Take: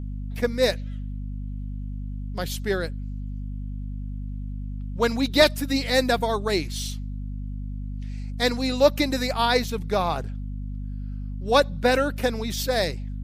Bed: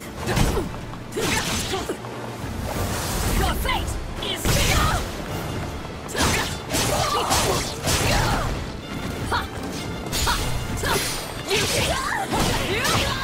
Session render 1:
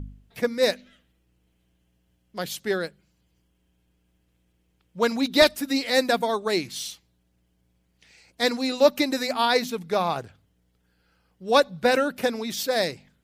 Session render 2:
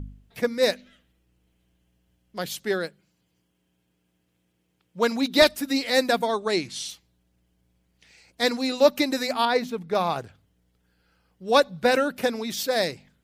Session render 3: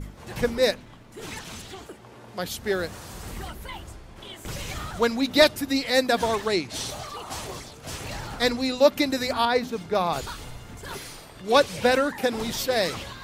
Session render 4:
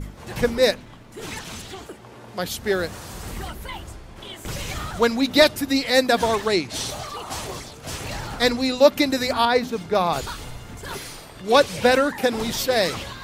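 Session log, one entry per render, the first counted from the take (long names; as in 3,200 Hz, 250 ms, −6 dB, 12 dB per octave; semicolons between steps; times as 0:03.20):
hum removal 50 Hz, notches 5
0:02.65–0:05.39: high-pass filter 120 Hz; 0:06.26–0:06.89: low-pass filter 10,000 Hz 24 dB per octave; 0:09.45–0:09.95: high-shelf EQ 2,900 Hz −10.5 dB
mix in bed −14.5 dB
level +3.5 dB; brickwall limiter −3 dBFS, peak gain reduction 2.5 dB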